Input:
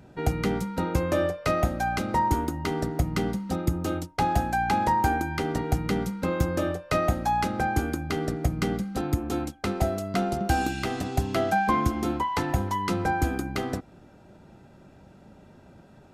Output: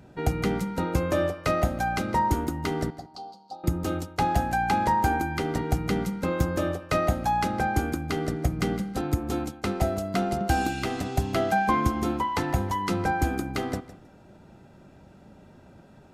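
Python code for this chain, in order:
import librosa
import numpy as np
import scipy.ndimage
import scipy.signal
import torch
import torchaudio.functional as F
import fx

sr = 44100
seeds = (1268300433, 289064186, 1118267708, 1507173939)

y = fx.double_bandpass(x, sr, hz=1900.0, octaves=2.5, at=(2.9, 3.64))
y = fx.echo_feedback(y, sr, ms=159, feedback_pct=18, wet_db=-16.0)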